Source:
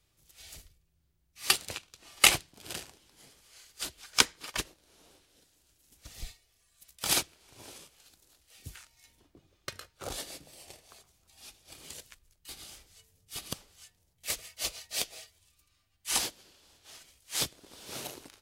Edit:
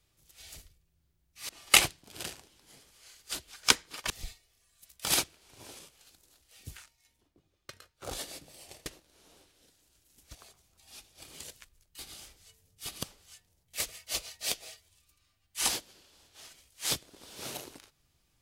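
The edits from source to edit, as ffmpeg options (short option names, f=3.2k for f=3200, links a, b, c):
-filter_complex "[0:a]asplit=7[a][b][c][d][e][f][g];[a]atrim=end=1.492[h];[b]atrim=start=1.988:end=4.602[i];[c]atrim=start=6.088:end=8.96,asetpts=PTS-STARTPTS,afade=t=out:st=2.712:d=0.16:silence=0.398107[j];[d]atrim=start=8.96:end=9.94,asetpts=PTS-STARTPTS,volume=-8dB[k];[e]atrim=start=9.94:end=10.852,asetpts=PTS-STARTPTS,afade=t=in:d=0.16:silence=0.398107[l];[f]atrim=start=4.598:end=6.092[m];[g]atrim=start=10.848[n];[h][i]acrossfade=d=0.004:c1=hsin:c2=hsin[o];[j][k][l]concat=n=3:v=0:a=1[p];[o][p]acrossfade=d=0.004:c1=hsin:c2=hsin[q];[q][m]acrossfade=d=0.004:c1=hsin:c2=hsin[r];[r][n]acrossfade=d=0.004:c1=hsin:c2=hsin"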